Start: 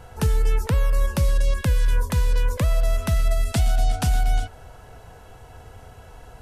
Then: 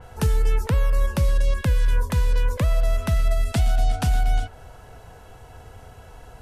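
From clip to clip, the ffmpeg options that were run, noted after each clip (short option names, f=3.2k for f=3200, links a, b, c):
-af "adynamicequalizer=threshold=0.00501:dfrequency=4100:dqfactor=0.7:tfrequency=4100:tqfactor=0.7:attack=5:release=100:ratio=0.375:range=2:mode=cutabove:tftype=highshelf"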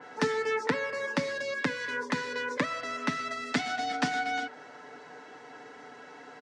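-af "highpass=f=240:w=0.5412,highpass=f=240:w=1.3066,equalizer=f=250:t=q:w=4:g=7,equalizer=f=660:t=q:w=4:g=-6,equalizer=f=1.9k:t=q:w=4:g=9,equalizer=f=2.9k:t=q:w=4:g=-5,lowpass=f=6k:w=0.5412,lowpass=f=6k:w=1.3066,aecho=1:1:6.8:0.57"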